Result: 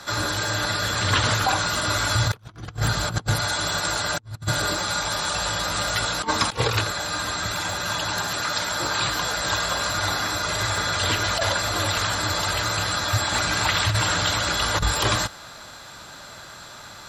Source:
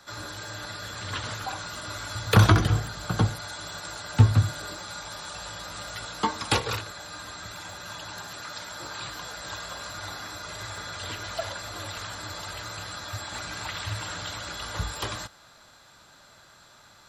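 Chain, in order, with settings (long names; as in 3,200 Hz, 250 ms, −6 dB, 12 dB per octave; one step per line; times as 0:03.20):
asymmetric clip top −15.5 dBFS
dynamic equaliser 120 Hz, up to +7 dB, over −43 dBFS, Q 6.4
compressor whose output falls as the input rises −31 dBFS, ratio −0.5
level +8.5 dB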